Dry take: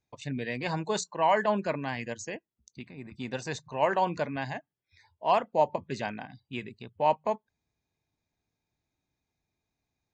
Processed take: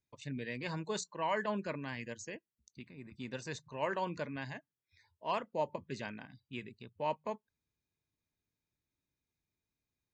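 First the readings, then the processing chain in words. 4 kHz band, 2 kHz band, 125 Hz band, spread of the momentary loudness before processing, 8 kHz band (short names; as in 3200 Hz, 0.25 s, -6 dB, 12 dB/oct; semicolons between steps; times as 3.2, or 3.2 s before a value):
-6.5 dB, -7.0 dB, -6.5 dB, 16 LU, -6.5 dB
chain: bell 750 Hz -10.5 dB 0.4 oct; gain -6.5 dB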